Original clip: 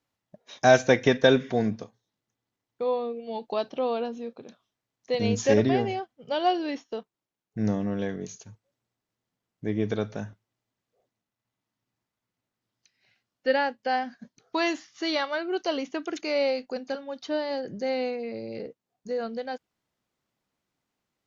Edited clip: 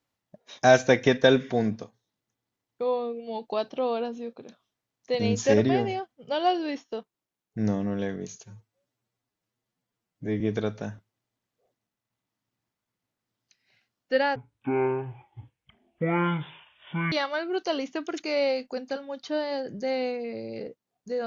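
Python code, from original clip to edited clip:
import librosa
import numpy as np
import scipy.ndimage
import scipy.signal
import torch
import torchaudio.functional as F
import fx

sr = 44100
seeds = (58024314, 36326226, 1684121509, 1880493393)

y = fx.edit(x, sr, fx.stretch_span(start_s=8.44, length_s=1.31, factor=1.5),
    fx.speed_span(start_s=13.7, length_s=1.41, speed=0.51), tone=tone)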